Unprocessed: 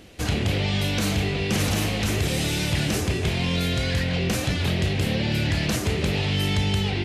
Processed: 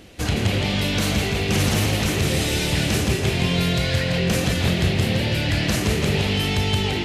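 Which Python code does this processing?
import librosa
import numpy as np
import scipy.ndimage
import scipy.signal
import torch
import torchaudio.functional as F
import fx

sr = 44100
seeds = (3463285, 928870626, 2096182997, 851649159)

y = fx.echo_feedback(x, sr, ms=166, feedback_pct=54, wet_db=-5.5)
y = y * 10.0 ** (2.0 / 20.0)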